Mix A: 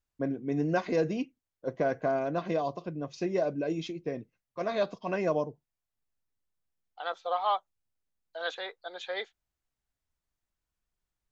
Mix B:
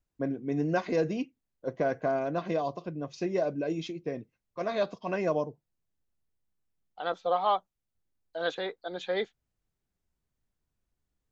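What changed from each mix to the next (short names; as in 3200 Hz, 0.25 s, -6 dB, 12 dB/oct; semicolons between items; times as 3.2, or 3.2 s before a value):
second voice: remove HPF 680 Hz 12 dB/oct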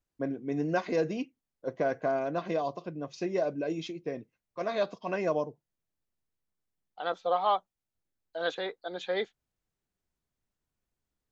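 master: add low shelf 160 Hz -6.5 dB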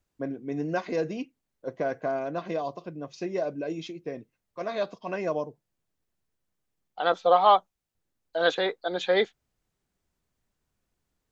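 second voice +8.0 dB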